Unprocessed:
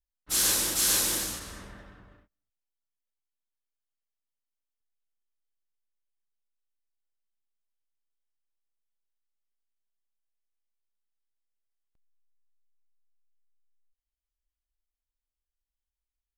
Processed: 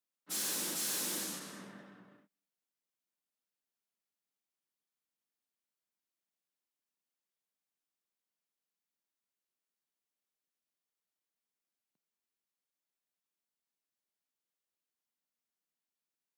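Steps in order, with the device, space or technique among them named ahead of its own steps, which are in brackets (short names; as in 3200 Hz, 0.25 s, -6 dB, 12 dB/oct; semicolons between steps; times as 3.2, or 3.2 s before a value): open-reel tape (soft clip -28.5 dBFS, distortion -8 dB; bell 120 Hz +5 dB 0.82 oct; white noise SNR 47 dB); steep high-pass 180 Hz 36 dB/oct; low shelf 200 Hz +10 dB; gain -5 dB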